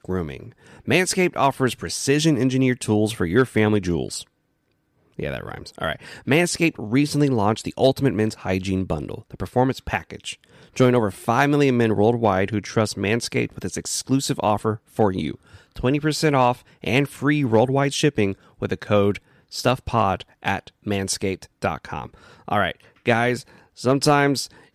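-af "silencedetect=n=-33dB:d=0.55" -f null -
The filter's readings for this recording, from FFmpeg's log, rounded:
silence_start: 4.22
silence_end: 5.19 | silence_duration: 0.97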